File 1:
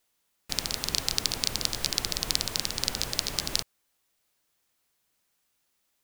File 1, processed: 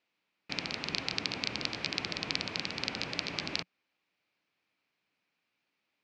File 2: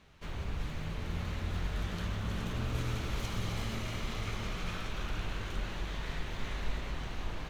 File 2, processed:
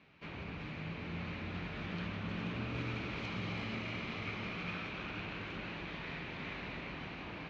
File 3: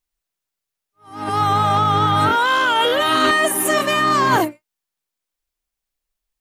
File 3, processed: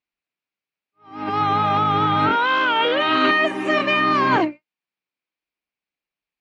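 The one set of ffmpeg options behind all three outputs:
-af "highpass=120,equalizer=f=180:t=q:w=4:g=4,equalizer=f=290:t=q:w=4:g=5,equalizer=f=2.4k:t=q:w=4:g=8,equalizer=f=3.5k:t=q:w=4:g=-3,lowpass=f=4.4k:w=0.5412,lowpass=f=4.4k:w=1.3066,volume=-2.5dB"

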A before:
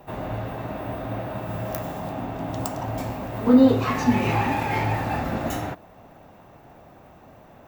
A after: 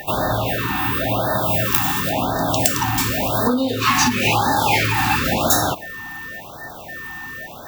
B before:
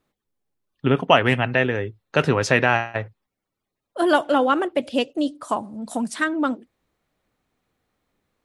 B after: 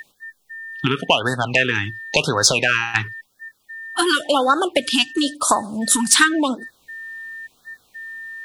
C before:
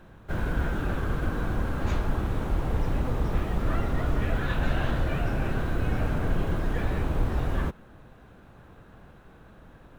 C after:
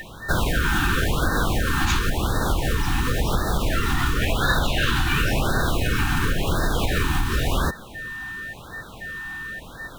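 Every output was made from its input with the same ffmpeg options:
-af "equalizer=f=2k:w=3.7:g=-6,aeval=exprs='val(0)+0.00316*sin(2*PI*1800*n/s)':c=same,acompressor=threshold=-25dB:ratio=16,tiltshelf=f=1.2k:g=-8.5,aeval=exprs='0.631*sin(PI/2*3.55*val(0)/0.631)':c=same,afftfilt=real='re*(1-between(b*sr/1024,500*pow(2600/500,0.5+0.5*sin(2*PI*0.94*pts/sr))/1.41,500*pow(2600/500,0.5+0.5*sin(2*PI*0.94*pts/sr))*1.41))':imag='im*(1-between(b*sr/1024,500*pow(2600/500,0.5+0.5*sin(2*PI*0.94*pts/sr))/1.41,500*pow(2600/500,0.5+0.5*sin(2*PI*0.94*pts/sr))*1.41))':win_size=1024:overlap=0.75,volume=1dB"

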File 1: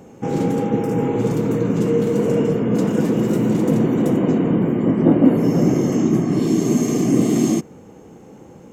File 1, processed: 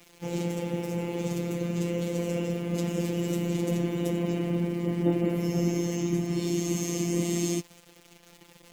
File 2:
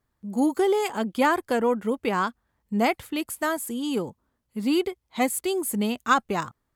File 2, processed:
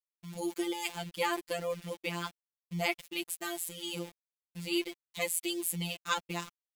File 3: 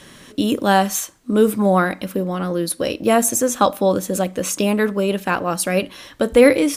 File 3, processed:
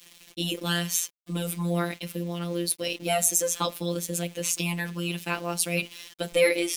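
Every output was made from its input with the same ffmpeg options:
-af "aeval=exprs='val(0)*gte(abs(val(0)),0.0126)':c=same,afftfilt=real='hypot(re,im)*cos(PI*b)':imag='0':win_size=1024:overlap=0.75,highshelf=f=1.9k:t=q:w=1.5:g=7.5,volume=-7.5dB"

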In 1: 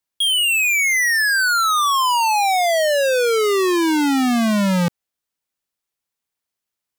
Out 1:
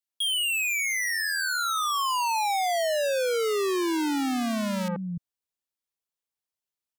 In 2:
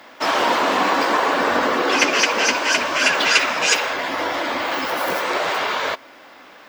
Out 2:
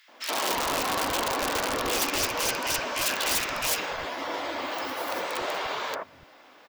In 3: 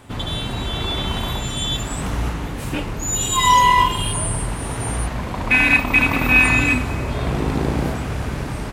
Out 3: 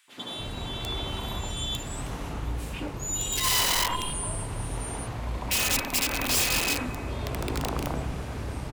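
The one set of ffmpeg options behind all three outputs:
-filter_complex "[0:a]aeval=exprs='(mod(3.55*val(0)+1,2)-1)/3.55':c=same,acrossover=split=180|1700[a][b][c];[b]adelay=80[d];[a]adelay=290[e];[e][d][c]amix=inputs=3:normalize=0,volume=-8dB"

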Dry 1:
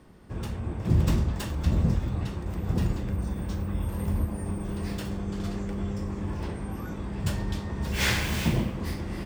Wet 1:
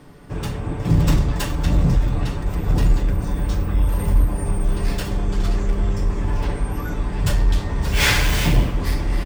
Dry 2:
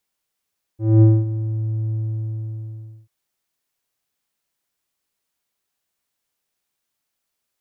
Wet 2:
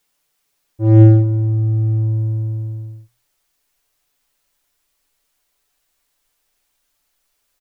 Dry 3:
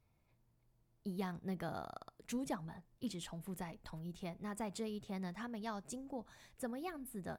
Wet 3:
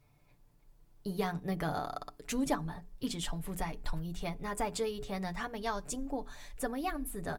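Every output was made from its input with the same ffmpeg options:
-filter_complex "[0:a]asubboost=boost=6.5:cutoff=54,bandreject=f=60:t=h:w=6,bandreject=f=120:t=h:w=6,bandreject=f=180:t=h:w=6,bandreject=f=240:t=h:w=6,bandreject=f=300:t=h:w=6,bandreject=f=360:t=h:w=6,bandreject=f=420:t=h:w=6,aecho=1:1:6.9:0.56,asplit=2[a][b];[b]volume=23.5dB,asoftclip=hard,volume=-23.5dB,volume=-6.5dB[c];[a][c]amix=inputs=2:normalize=0,volume=5dB"

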